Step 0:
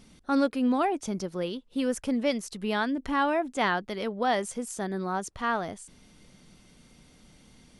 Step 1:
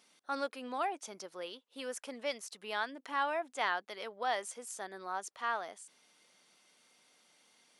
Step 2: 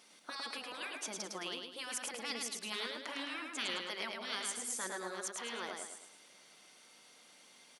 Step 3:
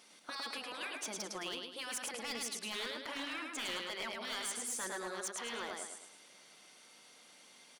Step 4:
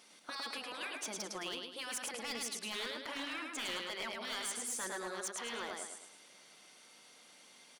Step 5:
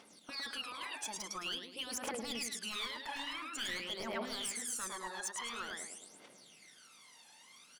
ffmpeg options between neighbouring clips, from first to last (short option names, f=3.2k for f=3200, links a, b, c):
-af "highpass=630,volume=-5.5dB"
-filter_complex "[0:a]afftfilt=real='re*lt(hypot(re,im),0.0355)':imag='im*lt(hypot(re,im),0.0355)':win_size=1024:overlap=0.75,bandreject=f=50:t=h:w=6,bandreject=f=100:t=h:w=6,bandreject=f=150:t=h:w=6,bandreject=f=200:t=h:w=6,bandreject=f=250:t=h:w=6,asplit=2[a][b];[b]aecho=0:1:107|214|321|428|535:0.631|0.259|0.106|0.0435|0.0178[c];[a][c]amix=inputs=2:normalize=0,volume=5dB"
-af "volume=35dB,asoftclip=hard,volume=-35dB,volume=1dB"
-af anull
-af "aphaser=in_gain=1:out_gain=1:delay=1.2:decay=0.74:speed=0.48:type=triangular,volume=-3dB"